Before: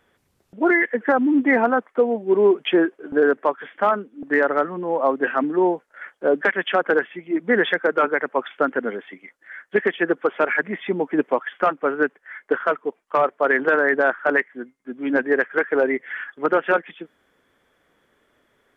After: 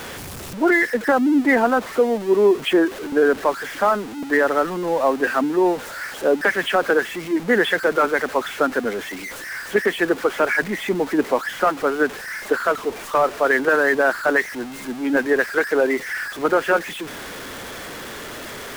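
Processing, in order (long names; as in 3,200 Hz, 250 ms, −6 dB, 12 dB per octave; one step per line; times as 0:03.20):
converter with a step at zero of −28 dBFS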